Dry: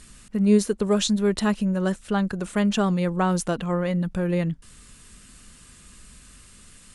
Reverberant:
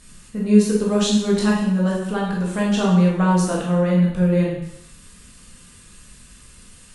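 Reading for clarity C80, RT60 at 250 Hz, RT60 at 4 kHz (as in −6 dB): 5.0 dB, 0.80 s, 0.80 s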